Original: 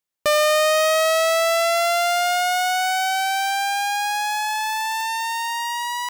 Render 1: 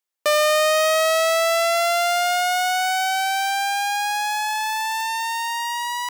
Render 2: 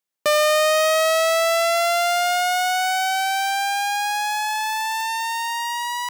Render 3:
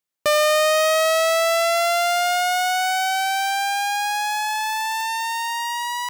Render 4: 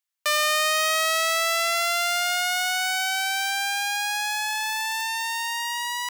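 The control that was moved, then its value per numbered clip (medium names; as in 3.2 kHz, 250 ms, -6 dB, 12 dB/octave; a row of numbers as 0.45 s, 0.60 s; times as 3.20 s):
high-pass, cutoff frequency: 370 Hz, 140 Hz, 51 Hz, 1.2 kHz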